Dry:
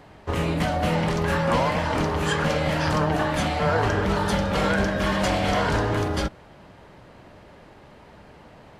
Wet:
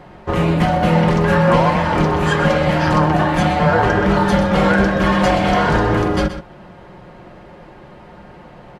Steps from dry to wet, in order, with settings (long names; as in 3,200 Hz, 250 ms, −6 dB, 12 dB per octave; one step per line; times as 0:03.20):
high-shelf EQ 3,300 Hz −10 dB
comb filter 5.6 ms, depth 46%
single-tap delay 126 ms −11 dB
level +7.5 dB